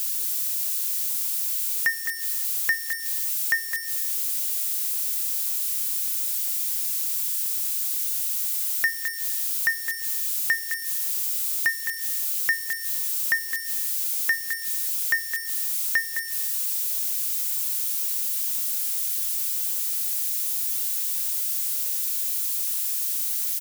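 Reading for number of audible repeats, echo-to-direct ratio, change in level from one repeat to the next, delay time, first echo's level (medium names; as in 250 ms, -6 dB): 1, -9.0 dB, no regular repeats, 212 ms, -9.0 dB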